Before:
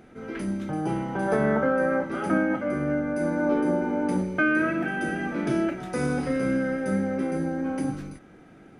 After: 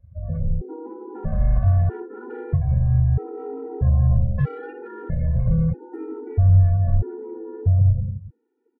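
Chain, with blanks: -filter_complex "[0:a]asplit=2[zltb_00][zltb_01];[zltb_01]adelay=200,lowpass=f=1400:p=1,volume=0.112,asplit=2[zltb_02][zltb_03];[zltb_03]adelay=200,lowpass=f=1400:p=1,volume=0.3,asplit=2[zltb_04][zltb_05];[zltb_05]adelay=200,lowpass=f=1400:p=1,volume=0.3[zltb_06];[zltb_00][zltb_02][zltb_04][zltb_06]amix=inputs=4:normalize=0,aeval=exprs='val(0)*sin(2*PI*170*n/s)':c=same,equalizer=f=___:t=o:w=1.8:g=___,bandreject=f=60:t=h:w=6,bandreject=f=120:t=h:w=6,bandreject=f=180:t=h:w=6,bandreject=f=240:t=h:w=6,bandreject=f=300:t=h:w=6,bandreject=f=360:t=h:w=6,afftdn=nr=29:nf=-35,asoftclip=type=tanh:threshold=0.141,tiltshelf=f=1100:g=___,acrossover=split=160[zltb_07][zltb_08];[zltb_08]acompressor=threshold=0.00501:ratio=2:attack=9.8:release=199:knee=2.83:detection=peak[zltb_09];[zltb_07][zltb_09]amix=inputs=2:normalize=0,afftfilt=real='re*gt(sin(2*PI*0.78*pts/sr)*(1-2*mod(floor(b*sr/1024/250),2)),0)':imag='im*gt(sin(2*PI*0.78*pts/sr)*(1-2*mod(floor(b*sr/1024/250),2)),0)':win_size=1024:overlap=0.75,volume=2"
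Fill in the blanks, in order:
87, 10, 6.5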